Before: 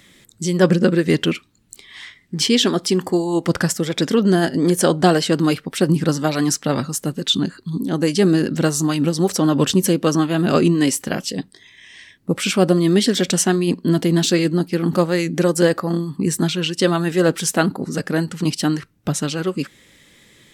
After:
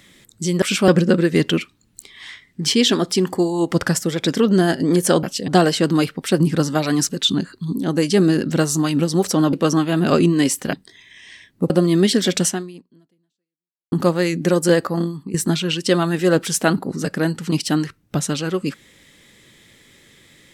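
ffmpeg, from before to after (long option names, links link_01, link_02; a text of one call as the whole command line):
ffmpeg -i in.wav -filter_complex "[0:a]asplit=11[link_01][link_02][link_03][link_04][link_05][link_06][link_07][link_08][link_09][link_10][link_11];[link_01]atrim=end=0.622[link_12];[link_02]atrim=start=12.368:end=12.632[link_13];[link_03]atrim=start=0.618:end=4.972[link_14];[link_04]atrim=start=11.148:end=11.402[link_15];[link_05]atrim=start=4.968:end=6.582[link_16];[link_06]atrim=start=7.138:end=9.582[link_17];[link_07]atrim=start=9.948:end=11.152[link_18];[link_08]atrim=start=11.398:end=12.372[link_19];[link_09]atrim=start=12.628:end=14.85,asetpts=PTS-STARTPTS,afade=type=out:start_time=0.752:duration=1.47:curve=exp[link_20];[link_10]atrim=start=14.85:end=16.27,asetpts=PTS-STARTPTS,afade=type=in:duration=0.004:curve=hsin,afade=type=out:start_time=1.08:duration=0.34:silence=0.211349[link_21];[link_11]atrim=start=16.27,asetpts=PTS-STARTPTS,afade=type=in:duration=0.004:curve=hsin:silence=0.211349[link_22];[link_12][link_13]acrossfade=duration=0.004:curve1=hsin:curve2=hsin[link_23];[link_23][link_14]acrossfade=duration=0.004:curve1=hsin:curve2=hsin[link_24];[link_24][link_15]acrossfade=duration=0.004:curve1=hsin:curve2=hsin[link_25];[link_25][link_16]acrossfade=duration=0.004:curve1=hsin:curve2=hsin[link_26];[link_26][link_17]acrossfade=duration=0.004:curve1=hsin:curve2=hsin[link_27];[link_27][link_18]acrossfade=duration=0.004:curve1=hsin:curve2=hsin[link_28];[link_28][link_19]acrossfade=duration=0.004:curve1=hsin:curve2=hsin[link_29];[link_20][link_21][link_22]concat=n=3:v=0:a=1[link_30];[link_29][link_30]acrossfade=duration=0.004:curve1=hsin:curve2=hsin" out.wav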